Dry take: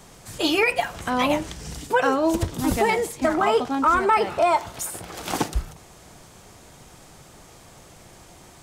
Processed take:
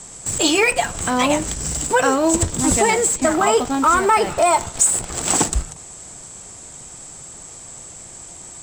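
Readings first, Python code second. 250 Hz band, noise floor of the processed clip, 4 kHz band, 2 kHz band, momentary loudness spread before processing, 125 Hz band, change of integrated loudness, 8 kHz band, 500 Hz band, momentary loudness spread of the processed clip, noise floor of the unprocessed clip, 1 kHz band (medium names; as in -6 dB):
+4.0 dB, -39 dBFS, +5.0 dB, +4.0 dB, 11 LU, +4.5 dB, +5.0 dB, +17.5 dB, +3.5 dB, 20 LU, -49 dBFS, +3.5 dB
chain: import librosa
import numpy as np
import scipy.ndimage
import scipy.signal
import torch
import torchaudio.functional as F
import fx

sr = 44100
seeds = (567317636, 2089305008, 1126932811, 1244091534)

p1 = fx.lowpass_res(x, sr, hz=7800.0, q=13.0)
p2 = fx.schmitt(p1, sr, flips_db=-26.0)
p3 = p1 + F.gain(torch.from_numpy(p2), -12.0).numpy()
y = F.gain(torch.from_numpy(p3), 2.5).numpy()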